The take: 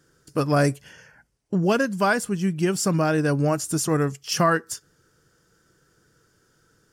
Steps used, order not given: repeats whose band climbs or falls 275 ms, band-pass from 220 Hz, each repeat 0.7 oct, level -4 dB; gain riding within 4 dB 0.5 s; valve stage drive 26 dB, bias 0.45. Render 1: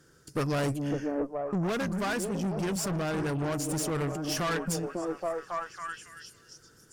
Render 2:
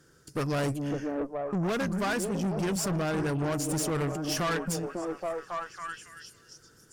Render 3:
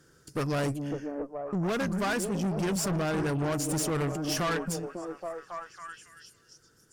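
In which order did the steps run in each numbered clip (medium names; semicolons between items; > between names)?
repeats whose band climbs or falls > valve stage > gain riding; repeats whose band climbs or falls > gain riding > valve stage; gain riding > repeats whose band climbs or falls > valve stage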